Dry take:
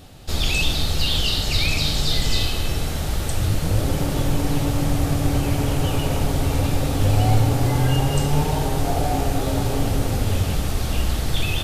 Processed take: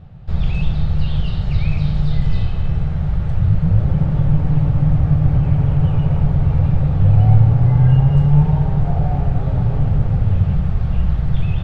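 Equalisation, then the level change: LPF 1700 Hz 12 dB/oct; resonant low shelf 210 Hz +8 dB, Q 3; -3.5 dB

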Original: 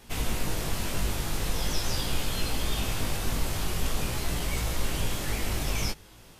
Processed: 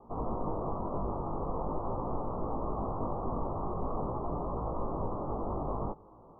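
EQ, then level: steep low-pass 1200 Hz 96 dB/oct; low shelf 120 Hz -7 dB; low shelf 260 Hz -7.5 dB; +4.5 dB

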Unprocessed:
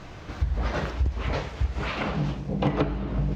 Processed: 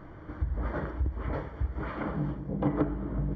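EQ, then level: polynomial smoothing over 41 samples; bell 310 Hz +7 dB 0.27 oct; notch 740 Hz, Q 12; -5.0 dB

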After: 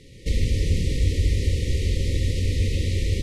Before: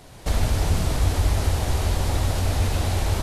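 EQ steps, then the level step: brick-wall FIR band-stop 560–1800 Hz; air absorption 59 m; 0.0 dB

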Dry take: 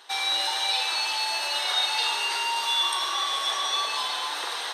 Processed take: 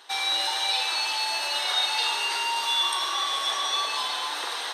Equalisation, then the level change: bell 280 Hz +2.5 dB 0.4 oct; 0.0 dB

